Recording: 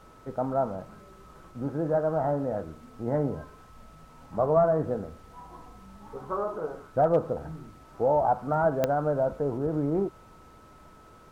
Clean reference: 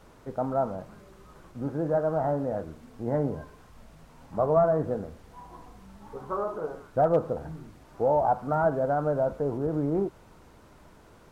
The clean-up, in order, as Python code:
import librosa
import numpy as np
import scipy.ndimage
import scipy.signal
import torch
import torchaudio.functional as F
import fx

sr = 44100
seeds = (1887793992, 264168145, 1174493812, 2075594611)

y = fx.fix_declick_ar(x, sr, threshold=10.0)
y = fx.notch(y, sr, hz=1300.0, q=30.0)